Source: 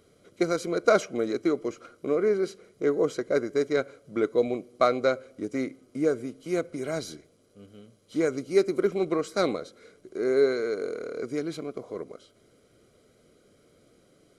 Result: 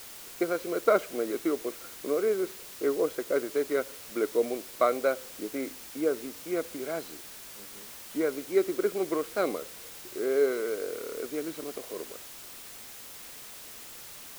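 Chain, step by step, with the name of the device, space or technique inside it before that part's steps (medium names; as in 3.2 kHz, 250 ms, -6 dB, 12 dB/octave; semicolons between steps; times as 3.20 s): wax cylinder (band-pass 270–2600 Hz; wow and flutter; white noise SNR 14 dB); trim -2 dB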